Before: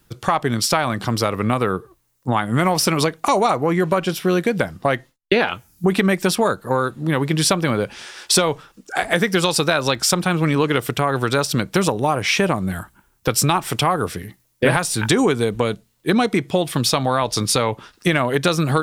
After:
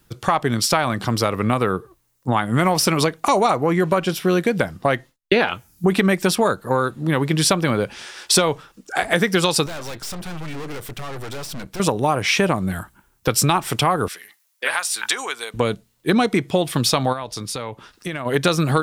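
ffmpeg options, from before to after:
ffmpeg -i in.wav -filter_complex "[0:a]asettb=1/sr,asplit=3[link_01][link_02][link_03];[link_01]atrim=end=9.664[link_04];[link_02]atrim=start=9.66:end=11.8,asetpts=PTS-STARTPTS,afade=type=in:duration=0.004:curve=qsin,afade=type=out:start_time=2.136:duration=0.004:curve=qsin,aeval=exprs='(tanh(31.6*val(0)+0.7)-tanh(0.7))/31.6':channel_layout=same[link_05];[link_03]atrim=start=11.796[link_06];[link_04][link_05]acrossfade=duration=0.004:curve1=hsin:curve2=qsin[link_07];[link_07][link_06]acrossfade=duration=0.004:curve1=qsin:curve2=hsin,asettb=1/sr,asplit=3[link_08][link_09][link_10];[link_08]atrim=end=14.084[link_11];[link_09]atrim=start=14.08:end=15.54,asetpts=PTS-STARTPTS,afade=type=in:duration=0.004:curve=qsin,afade=type=out:start_time=1.456:duration=0.004:curve=qsin,highpass=1100[link_12];[link_10]atrim=start=15.536[link_13];[link_11][link_12]acrossfade=duration=0.004:curve1=hsin:curve2=qsin[link_14];[link_14][link_13]acrossfade=duration=0.004:curve1=qsin:curve2=hsin,asplit=3[link_15][link_16][link_17];[link_15]afade=type=out:start_time=17.12:duration=0.02[link_18];[link_16]acompressor=threshold=-42dB:ratio=1.5:attack=3.2:release=140:knee=1:detection=peak,afade=type=in:start_time=17.12:duration=0.02,afade=type=out:start_time=18.25:duration=0.02[link_19];[link_17]afade=type=in:start_time=18.25:duration=0.02[link_20];[link_18][link_19][link_20]amix=inputs=3:normalize=0" out.wav

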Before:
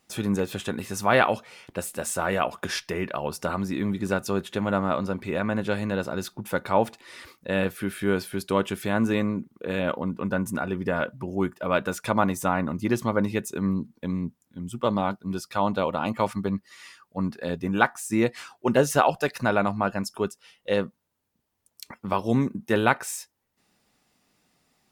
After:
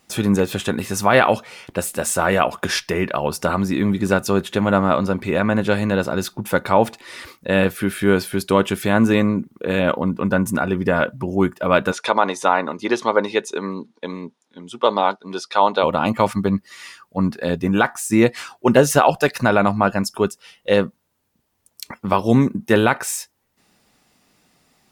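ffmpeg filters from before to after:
ffmpeg -i in.wav -filter_complex "[0:a]asplit=3[link_01][link_02][link_03];[link_01]afade=type=out:start_time=11.91:duration=0.02[link_04];[link_02]highpass=410,equalizer=frequency=430:width_type=q:width=4:gain=5,equalizer=frequency=900:width_type=q:width=4:gain=4,equalizer=frequency=3700:width_type=q:width=4:gain=6,equalizer=frequency=7800:width_type=q:width=4:gain=-8,lowpass=frequency=8500:width=0.5412,lowpass=frequency=8500:width=1.3066,afade=type=in:start_time=11.91:duration=0.02,afade=type=out:start_time=15.82:duration=0.02[link_05];[link_03]afade=type=in:start_time=15.82:duration=0.02[link_06];[link_04][link_05][link_06]amix=inputs=3:normalize=0,alimiter=level_in=9dB:limit=-1dB:release=50:level=0:latency=1,volume=-1dB" out.wav

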